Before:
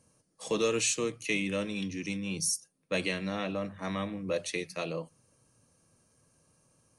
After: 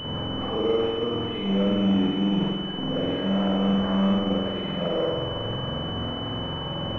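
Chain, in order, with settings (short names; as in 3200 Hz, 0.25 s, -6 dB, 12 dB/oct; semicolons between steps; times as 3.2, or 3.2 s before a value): zero-crossing step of -31 dBFS; limiter -27 dBFS, peak gain reduction 10 dB; spring tank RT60 1.6 s, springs 46 ms, chirp 30 ms, DRR -9.5 dB; pulse-width modulation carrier 3000 Hz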